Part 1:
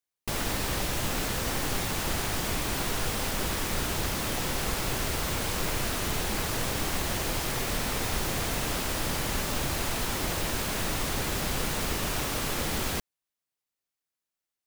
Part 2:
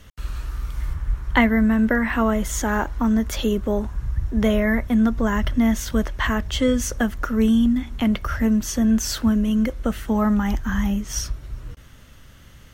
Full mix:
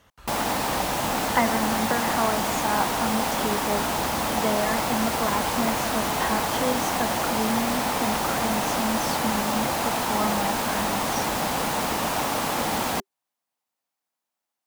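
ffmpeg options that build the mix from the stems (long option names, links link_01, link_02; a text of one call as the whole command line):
ffmpeg -i stem1.wav -i stem2.wav -filter_complex "[0:a]equalizer=frequency=230:width_type=o:width=0.73:gain=6,bandreject=frequency=390:width=12,volume=2dB[link_01];[1:a]volume=-9.5dB[link_02];[link_01][link_02]amix=inputs=2:normalize=0,highpass=frequency=170:poles=1,equalizer=frequency=830:width=1.3:gain=11" out.wav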